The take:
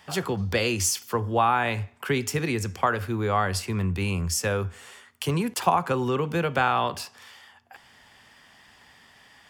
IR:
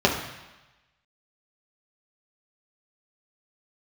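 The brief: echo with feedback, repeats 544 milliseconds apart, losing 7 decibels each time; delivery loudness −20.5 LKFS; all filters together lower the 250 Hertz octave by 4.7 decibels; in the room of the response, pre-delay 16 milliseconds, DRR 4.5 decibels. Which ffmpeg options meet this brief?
-filter_complex "[0:a]equalizer=frequency=250:width_type=o:gain=-7,aecho=1:1:544|1088|1632|2176|2720:0.447|0.201|0.0905|0.0407|0.0183,asplit=2[link_01][link_02];[1:a]atrim=start_sample=2205,adelay=16[link_03];[link_02][link_03]afir=irnorm=-1:irlink=0,volume=-22.5dB[link_04];[link_01][link_04]amix=inputs=2:normalize=0,volume=3.5dB"

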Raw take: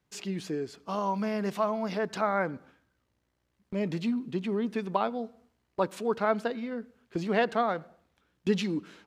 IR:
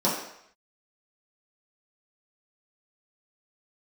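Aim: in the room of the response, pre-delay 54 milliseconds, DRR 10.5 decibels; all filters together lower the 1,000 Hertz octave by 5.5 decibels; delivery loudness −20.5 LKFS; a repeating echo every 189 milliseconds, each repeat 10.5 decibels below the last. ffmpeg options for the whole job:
-filter_complex "[0:a]equalizer=frequency=1000:width_type=o:gain=-7.5,aecho=1:1:189|378|567:0.299|0.0896|0.0269,asplit=2[link_01][link_02];[1:a]atrim=start_sample=2205,adelay=54[link_03];[link_02][link_03]afir=irnorm=-1:irlink=0,volume=-24.5dB[link_04];[link_01][link_04]amix=inputs=2:normalize=0,volume=11dB"

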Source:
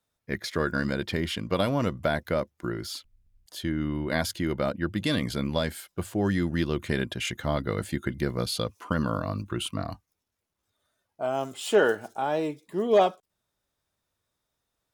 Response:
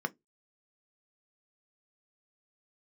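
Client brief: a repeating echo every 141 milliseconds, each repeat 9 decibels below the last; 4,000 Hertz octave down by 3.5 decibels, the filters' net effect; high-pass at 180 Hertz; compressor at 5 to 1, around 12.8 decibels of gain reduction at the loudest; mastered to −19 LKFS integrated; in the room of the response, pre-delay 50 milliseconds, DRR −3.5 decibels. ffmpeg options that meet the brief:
-filter_complex "[0:a]highpass=180,equalizer=frequency=4000:width_type=o:gain=-4.5,acompressor=threshold=-30dB:ratio=5,aecho=1:1:141|282|423|564:0.355|0.124|0.0435|0.0152,asplit=2[link_01][link_02];[1:a]atrim=start_sample=2205,adelay=50[link_03];[link_02][link_03]afir=irnorm=-1:irlink=0,volume=-1.5dB[link_04];[link_01][link_04]amix=inputs=2:normalize=0,volume=11dB"

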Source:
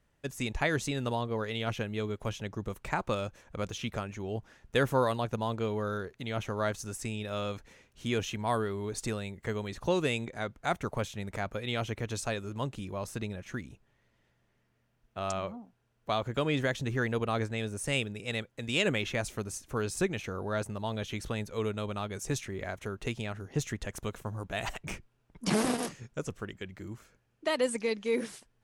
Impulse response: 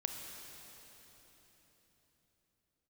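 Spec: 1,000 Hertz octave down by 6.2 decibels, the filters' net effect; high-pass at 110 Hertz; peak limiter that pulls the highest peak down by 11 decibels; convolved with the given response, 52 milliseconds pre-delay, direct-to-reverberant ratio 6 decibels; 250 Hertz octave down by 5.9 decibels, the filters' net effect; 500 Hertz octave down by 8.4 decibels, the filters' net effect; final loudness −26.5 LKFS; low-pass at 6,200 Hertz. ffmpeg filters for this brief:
-filter_complex "[0:a]highpass=110,lowpass=6200,equalizer=frequency=250:width_type=o:gain=-5,equalizer=frequency=500:width_type=o:gain=-7.5,equalizer=frequency=1000:width_type=o:gain=-5.5,alimiter=level_in=2.5dB:limit=-24dB:level=0:latency=1,volume=-2.5dB,asplit=2[link_01][link_02];[1:a]atrim=start_sample=2205,adelay=52[link_03];[link_02][link_03]afir=irnorm=-1:irlink=0,volume=-7dB[link_04];[link_01][link_04]amix=inputs=2:normalize=0,volume=13dB"

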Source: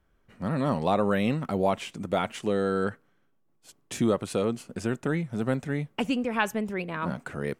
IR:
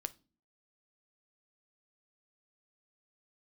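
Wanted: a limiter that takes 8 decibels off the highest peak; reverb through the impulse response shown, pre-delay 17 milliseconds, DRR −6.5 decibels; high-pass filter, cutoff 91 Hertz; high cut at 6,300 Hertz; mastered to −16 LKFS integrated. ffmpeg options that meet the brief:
-filter_complex "[0:a]highpass=91,lowpass=6300,alimiter=limit=-18.5dB:level=0:latency=1,asplit=2[link_01][link_02];[1:a]atrim=start_sample=2205,adelay=17[link_03];[link_02][link_03]afir=irnorm=-1:irlink=0,volume=8dB[link_04];[link_01][link_04]amix=inputs=2:normalize=0,volume=7.5dB"

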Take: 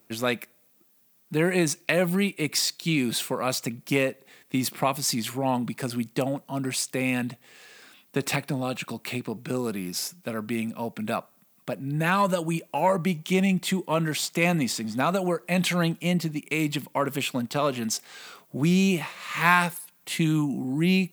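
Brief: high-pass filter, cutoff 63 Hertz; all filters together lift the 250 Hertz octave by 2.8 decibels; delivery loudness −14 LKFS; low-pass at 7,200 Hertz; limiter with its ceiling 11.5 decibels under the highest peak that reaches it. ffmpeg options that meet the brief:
ffmpeg -i in.wav -af "highpass=63,lowpass=7200,equalizer=frequency=250:width_type=o:gain=4,volume=13dB,alimiter=limit=-3dB:level=0:latency=1" out.wav

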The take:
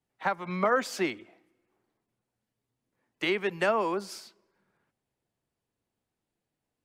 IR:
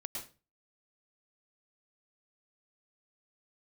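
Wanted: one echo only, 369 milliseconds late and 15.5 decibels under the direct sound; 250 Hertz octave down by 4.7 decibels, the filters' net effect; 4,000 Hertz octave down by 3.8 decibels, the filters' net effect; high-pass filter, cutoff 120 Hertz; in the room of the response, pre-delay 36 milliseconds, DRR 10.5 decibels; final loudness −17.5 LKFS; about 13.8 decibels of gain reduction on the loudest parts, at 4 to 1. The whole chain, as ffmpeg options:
-filter_complex "[0:a]highpass=120,equalizer=frequency=250:width_type=o:gain=-7.5,equalizer=frequency=4000:width_type=o:gain=-5.5,acompressor=threshold=-39dB:ratio=4,aecho=1:1:369:0.168,asplit=2[link_01][link_02];[1:a]atrim=start_sample=2205,adelay=36[link_03];[link_02][link_03]afir=irnorm=-1:irlink=0,volume=-9.5dB[link_04];[link_01][link_04]amix=inputs=2:normalize=0,volume=24.5dB"

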